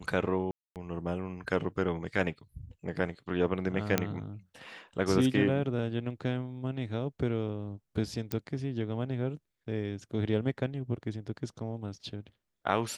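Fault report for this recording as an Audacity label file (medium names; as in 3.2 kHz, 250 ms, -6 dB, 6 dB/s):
0.510000	0.760000	dropout 248 ms
3.980000	3.980000	pop -10 dBFS
8.320000	8.320000	pop -16 dBFS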